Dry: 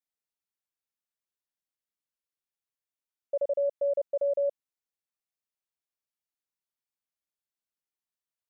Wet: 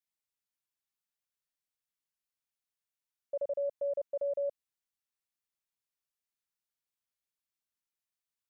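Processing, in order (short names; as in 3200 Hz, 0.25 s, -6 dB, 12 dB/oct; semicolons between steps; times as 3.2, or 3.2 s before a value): bell 450 Hz -6.5 dB 1.9 oct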